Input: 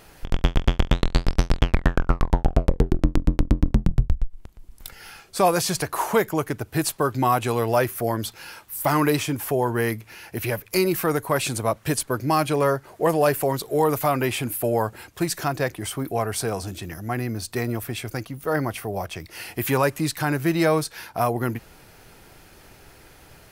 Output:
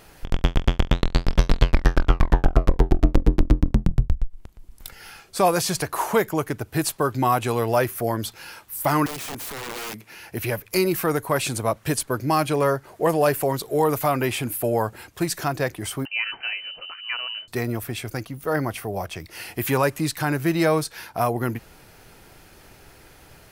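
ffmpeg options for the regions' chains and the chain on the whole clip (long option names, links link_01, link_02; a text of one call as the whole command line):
ffmpeg -i in.wav -filter_complex "[0:a]asettb=1/sr,asplit=3[link_01][link_02][link_03];[link_01]atrim=end=0.834[link_04];[link_02]atrim=start=0.83:end=3.6,asetpts=PTS-STARTPTS,afade=type=in:duration=0.004:curve=qsin,afade=type=out:start_time=2.766:duration=0.004:curve=qsin,equalizer=frequency=8800:width=2:gain=-4,aecho=1:1:464:0.596,atrim=end_sample=122157[link_05];[link_03]atrim=start=3.596[link_06];[link_04][link_05]acrossfade=duration=0.004:curve1=hsin:curve2=qsin[link_07];[link_07][link_06]acrossfade=duration=0.004:curve1=qsin:curve2=hsin,asettb=1/sr,asplit=3[link_08][link_09][link_10];[link_08]atrim=end=9.064[link_11];[link_09]atrim=start=9.06:end=10.15,asetpts=PTS-STARTPTS,afade=type=in:duration=0.004:curve=qsin,afade=type=out:start_time=1.086:duration=0.004:curve=qsin,highpass=frequency=140:width=0.5412,highpass=frequency=140:width=1.3066,acompressor=threshold=-26dB:ratio=20:attack=3.2:release=140:knee=1:detection=peak,aeval=exprs='(mod(23.7*val(0)+1,2)-1)/23.7':channel_layout=same[link_12];[link_10]atrim=start=10.146[link_13];[link_11][link_12]acrossfade=duration=0.004:curve1=hsin:curve2=qsin[link_14];[link_14][link_13]acrossfade=duration=0.004:curve1=qsin:curve2=hsin,asettb=1/sr,asplit=3[link_15][link_16][link_17];[link_15]atrim=end=16.054[link_18];[link_16]atrim=start=16.05:end=17.48,asetpts=PTS-STARTPTS,afade=type=in:duration=0.004:curve=qsin,afade=type=out:start_time=1.426:duration=0.004:curve=qsin,equalizer=frequency=230:width_type=o:width=2.1:gain=-6,lowpass=frequency=2600:width_type=q:width=0.5098,lowpass=frequency=2600:width_type=q:width=0.6013,lowpass=frequency=2600:width_type=q:width=0.9,lowpass=frequency=2600:width_type=q:width=2.563,afreqshift=-3100[link_19];[link_17]atrim=start=17.476[link_20];[link_18][link_19]acrossfade=duration=0.004:curve1=hsin:curve2=qsin[link_21];[link_21][link_20]acrossfade=duration=0.004:curve1=qsin:curve2=hsin" out.wav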